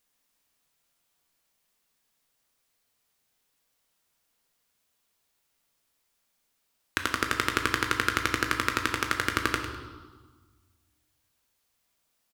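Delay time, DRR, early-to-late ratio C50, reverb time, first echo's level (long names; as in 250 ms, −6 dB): 102 ms, 3.0 dB, 5.5 dB, 1.4 s, −10.5 dB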